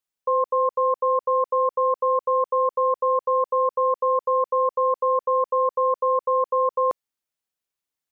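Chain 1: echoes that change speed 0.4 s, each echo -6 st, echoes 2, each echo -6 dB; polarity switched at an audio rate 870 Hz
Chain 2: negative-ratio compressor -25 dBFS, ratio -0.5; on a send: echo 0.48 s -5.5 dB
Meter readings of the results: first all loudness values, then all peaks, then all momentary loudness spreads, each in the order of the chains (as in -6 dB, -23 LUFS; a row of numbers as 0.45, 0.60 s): -20.5, -28.0 LUFS; -9.5, -13.5 dBFS; 6, 3 LU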